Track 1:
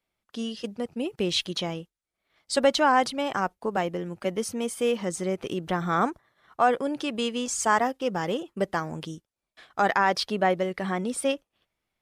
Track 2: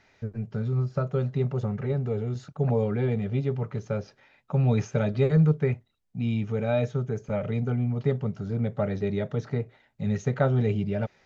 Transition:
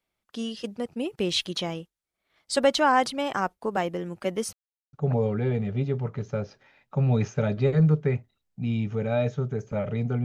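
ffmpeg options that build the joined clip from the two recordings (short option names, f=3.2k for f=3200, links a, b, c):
-filter_complex "[0:a]apad=whole_dur=10.24,atrim=end=10.24,asplit=2[a][b];[a]atrim=end=4.53,asetpts=PTS-STARTPTS,afade=t=out:st=4.526:d=0.004:c=hsin[c];[b]atrim=start=4.53:end=4.93,asetpts=PTS-STARTPTS,volume=0[d];[1:a]atrim=start=2.5:end=7.81,asetpts=PTS-STARTPTS,afade=t=in:d=0.004:c=hsin[e];[c][d][e]concat=n=3:v=0:a=1"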